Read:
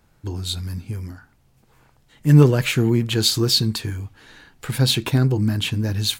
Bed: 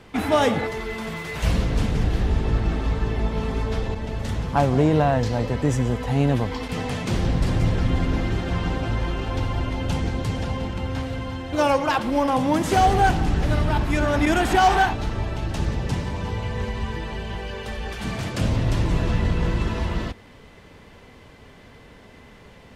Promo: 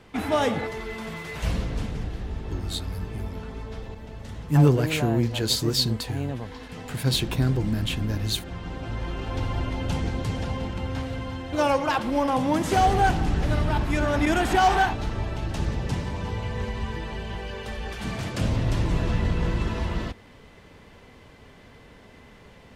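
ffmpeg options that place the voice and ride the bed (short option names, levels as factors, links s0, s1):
-filter_complex "[0:a]adelay=2250,volume=0.531[s0];[1:a]volume=1.68,afade=t=out:st=1.32:d=0.85:silence=0.446684,afade=t=in:st=8.62:d=0.89:silence=0.375837[s1];[s0][s1]amix=inputs=2:normalize=0"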